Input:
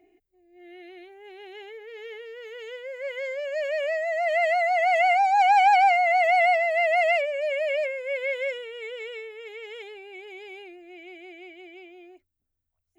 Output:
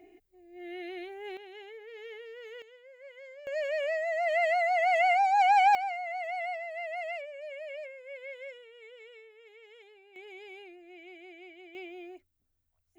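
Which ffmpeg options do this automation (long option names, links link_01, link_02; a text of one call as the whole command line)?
ffmpeg -i in.wav -af "asetnsamples=nb_out_samples=441:pad=0,asendcmd='1.37 volume volume -5dB;2.62 volume volume -17dB;3.47 volume volume -4dB;5.75 volume volume -15dB;10.16 volume volume -5.5dB;11.75 volume volume 3dB',volume=5dB" out.wav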